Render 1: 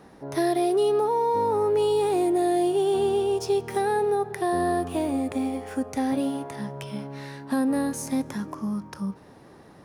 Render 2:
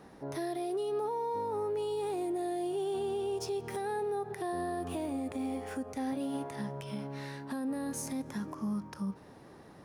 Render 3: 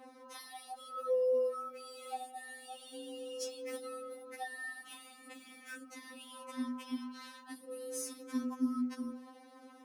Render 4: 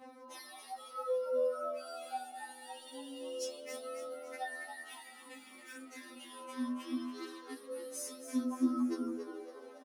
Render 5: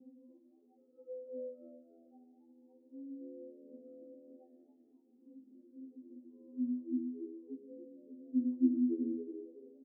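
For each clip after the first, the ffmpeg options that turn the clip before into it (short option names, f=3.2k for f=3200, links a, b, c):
-af "alimiter=level_in=0.5dB:limit=-24dB:level=0:latency=1:release=89,volume=-0.5dB,volume=-3.5dB"
-af "afreqshift=41,bandreject=f=50:t=h:w=6,bandreject=f=100:t=h:w=6,bandreject=f=150:t=h:w=6,bandreject=f=200:t=h:w=6,bandreject=f=250:t=h:w=6,bandreject=f=300:t=h:w=6,bandreject=f=350:t=h:w=6,bandreject=f=400:t=h:w=6,afftfilt=real='re*3.46*eq(mod(b,12),0)':imag='im*3.46*eq(mod(b,12),0)':win_size=2048:overlap=0.75,volume=1.5dB"
-filter_complex "[0:a]flanger=delay=15.5:depth=5.1:speed=0.23,asplit=2[a][b];[b]asplit=5[c][d][e][f][g];[c]adelay=279,afreqshift=81,volume=-9.5dB[h];[d]adelay=558,afreqshift=162,volume=-16.2dB[i];[e]adelay=837,afreqshift=243,volume=-23dB[j];[f]adelay=1116,afreqshift=324,volume=-29.7dB[k];[g]adelay=1395,afreqshift=405,volume=-36.5dB[l];[h][i][j][k][l]amix=inputs=5:normalize=0[m];[a][m]amix=inputs=2:normalize=0,volume=2.5dB"
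-af "asuperpass=centerf=250:order=8:qfactor=0.95,volume=2dB"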